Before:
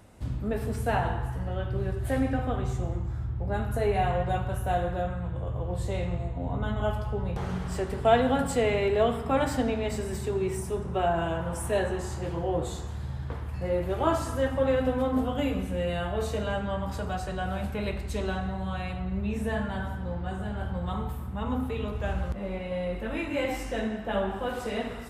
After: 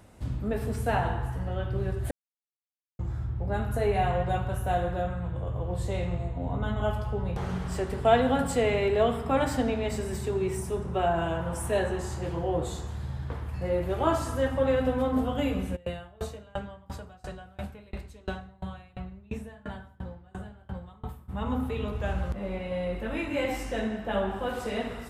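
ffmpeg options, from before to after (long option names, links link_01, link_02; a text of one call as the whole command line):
ffmpeg -i in.wav -filter_complex "[0:a]asplit=3[link_01][link_02][link_03];[link_01]afade=type=out:start_time=15.75:duration=0.02[link_04];[link_02]aeval=exprs='val(0)*pow(10,-29*if(lt(mod(2.9*n/s,1),2*abs(2.9)/1000),1-mod(2.9*n/s,1)/(2*abs(2.9)/1000),(mod(2.9*n/s,1)-2*abs(2.9)/1000)/(1-2*abs(2.9)/1000))/20)':channel_layout=same,afade=type=in:start_time=15.75:duration=0.02,afade=type=out:start_time=21.28:duration=0.02[link_05];[link_03]afade=type=in:start_time=21.28:duration=0.02[link_06];[link_04][link_05][link_06]amix=inputs=3:normalize=0,asplit=3[link_07][link_08][link_09];[link_07]atrim=end=2.11,asetpts=PTS-STARTPTS,afade=type=out:start_time=2.106:duration=0.004:curve=hsin[link_10];[link_08]atrim=start=2.11:end=2.99,asetpts=PTS-STARTPTS,volume=0[link_11];[link_09]atrim=start=2.99,asetpts=PTS-STARTPTS,afade=type=in:duration=0.004:curve=hsin[link_12];[link_10][link_11][link_12]concat=n=3:v=0:a=1" out.wav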